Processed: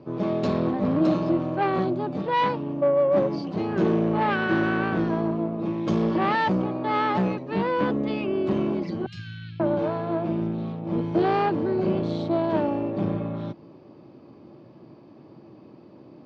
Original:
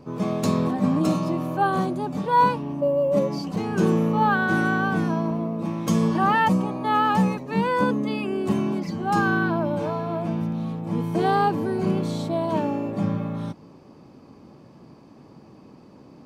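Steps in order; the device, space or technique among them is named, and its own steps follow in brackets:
0:09.06–0:09.60: inverse Chebyshev band-stop filter 310–940 Hz, stop band 60 dB
guitar amplifier (tube saturation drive 19 dB, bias 0.65; bass and treble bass 0 dB, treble +6 dB; loudspeaker in its box 77–4,000 Hz, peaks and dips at 120 Hz +5 dB, 340 Hz +9 dB, 600 Hz +6 dB)

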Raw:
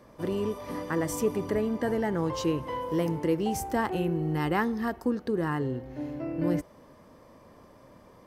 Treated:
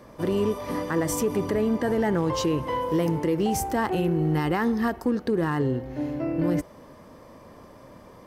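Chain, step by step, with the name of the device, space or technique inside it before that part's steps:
limiter into clipper (brickwall limiter −21.5 dBFS, peak gain reduction 7.5 dB; hard clipping −22.5 dBFS, distortion −33 dB)
level +6 dB

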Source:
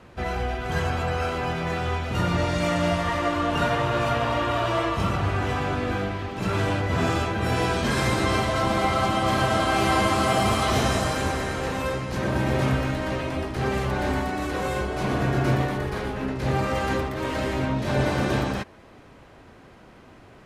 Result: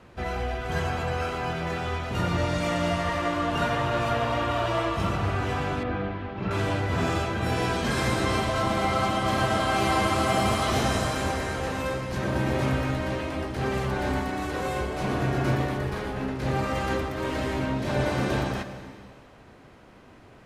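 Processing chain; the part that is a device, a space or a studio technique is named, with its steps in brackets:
saturated reverb return (on a send at −9.5 dB: convolution reverb RT60 1.9 s, pre-delay 88 ms + soft clipping −16 dBFS, distortion −20 dB)
0:05.83–0:06.51: on the sum: high-frequency loss of the air 290 metres
level −2.5 dB

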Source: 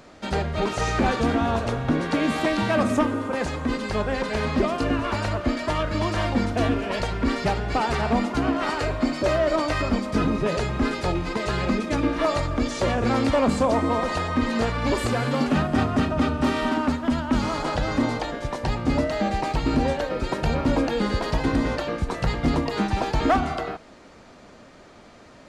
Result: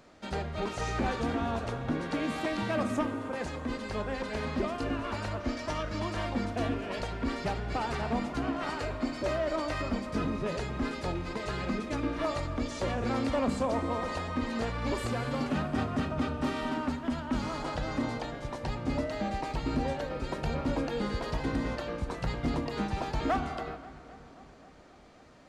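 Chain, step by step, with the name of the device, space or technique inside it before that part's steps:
0:05.40–0:06.00: parametric band 5,700 Hz +10 dB 0.27 octaves
dub delay into a spring reverb (feedback echo with a low-pass in the loop 265 ms, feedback 72%, low-pass 4,100 Hz, level −18.5 dB; spring reverb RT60 3.1 s, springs 34 ms, chirp 50 ms, DRR 15 dB)
level −9 dB

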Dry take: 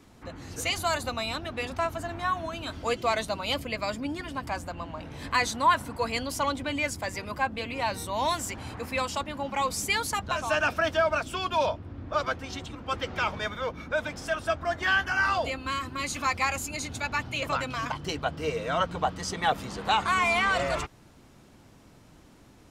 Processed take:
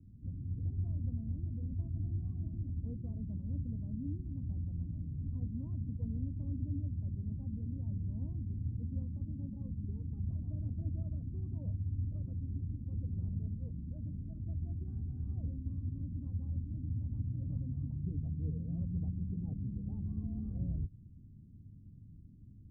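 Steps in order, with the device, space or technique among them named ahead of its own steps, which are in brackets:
the neighbour's flat through the wall (low-pass filter 210 Hz 24 dB per octave; parametric band 94 Hz +7 dB 0.55 octaves)
level +1 dB

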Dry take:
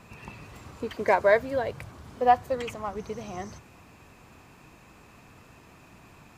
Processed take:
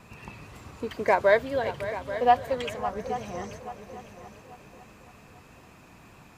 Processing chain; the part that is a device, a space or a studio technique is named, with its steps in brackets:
multi-head tape echo (echo machine with several playback heads 278 ms, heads second and third, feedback 41%, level −13.5 dB; tape wow and flutter 21 cents)
0:01.19–0:02.77: parametric band 3,300 Hz +6 dB 0.55 octaves

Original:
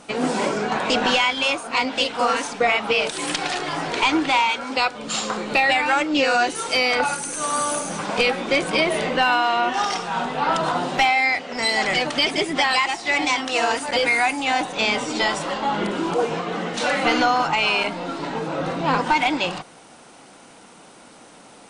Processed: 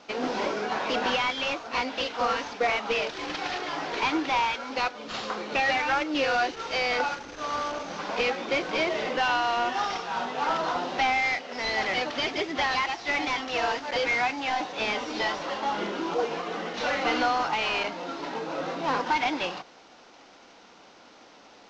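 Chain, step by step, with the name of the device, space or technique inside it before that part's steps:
early wireless headset (high-pass filter 260 Hz 12 dB per octave; variable-slope delta modulation 32 kbit/s)
level −5 dB

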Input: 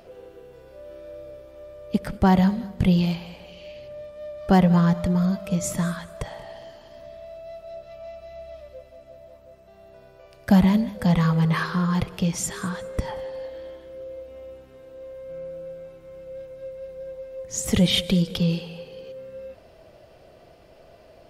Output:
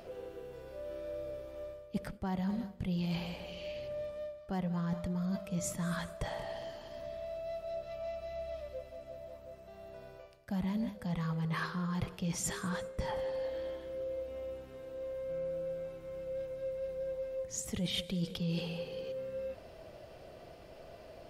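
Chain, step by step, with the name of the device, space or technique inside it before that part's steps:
compression on the reversed sound (reversed playback; downward compressor 8 to 1, threshold −32 dBFS, peak gain reduction 20 dB; reversed playback)
level −1 dB

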